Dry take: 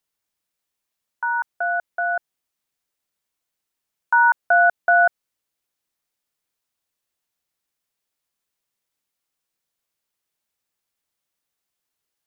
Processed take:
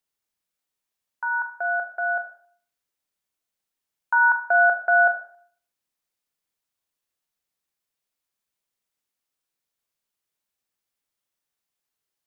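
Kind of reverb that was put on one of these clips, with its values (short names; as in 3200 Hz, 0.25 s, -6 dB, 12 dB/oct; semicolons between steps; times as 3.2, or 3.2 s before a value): Schroeder reverb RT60 0.55 s, combs from 30 ms, DRR 7 dB; gain -4 dB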